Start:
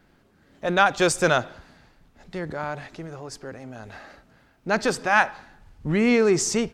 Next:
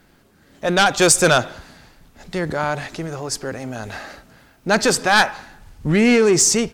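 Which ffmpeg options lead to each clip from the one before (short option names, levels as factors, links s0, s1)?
-af "aeval=exprs='0.631*sin(PI/2*2.24*val(0)/0.631)':c=same,dynaudnorm=f=230:g=7:m=2,aemphasis=mode=production:type=cd,volume=0.501"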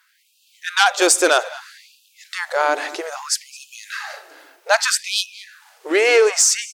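-filter_complex "[0:a]dynaudnorm=f=140:g=3:m=2.11,asplit=2[s0][s1];[s1]adelay=215.7,volume=0.126,highshelf=f=4000:g=-4.85[s2];[s0][s2]amix=inputs=2:normalize=0,afftfilt=real='re*gte(b*sr/1024,260*pow(2500/260,0.5+0.5*sin(2*PI*0.62*pts/sr)))':imag='im*gte(b*sr/1024,260*pow(2500/260,0.5+0.5*sin(2*PI*0.62*pts/sr)))':win_size=1024:overlap=0.75,volume=0.891"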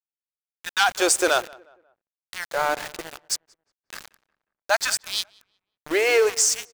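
-filter_complex "[0:a]aeval=exprs='val(0)*gte(abs(val(0)),0.0708)':c=same,asplit=2[s0][s1];[s1]adelay=180,lowpass=f=2000:p=1,volume=0.0708,asplit=2[s2][s3];[s3]adelay=180,lowpass=f=2000:p=1,volume=0.4,asplit=2[s4][s5];[s5]adelay=180,lowpass=f=2000:p=1,volume=0.4[s6];[s0][s2][s4][s6]amix=inputs=4:normalize=0,volume=0.562"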